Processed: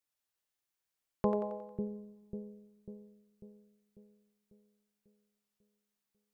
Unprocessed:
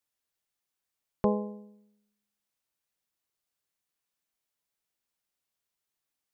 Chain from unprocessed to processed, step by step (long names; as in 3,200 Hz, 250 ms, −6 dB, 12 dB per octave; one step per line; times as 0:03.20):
echo with a time of its own for lows and highs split 410 Hz, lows 545 ms, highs 90 ms, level −4 dB
coupled-rooms reverb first 0.98 s, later 2.7 s, DRR 16 dB
level −4 dB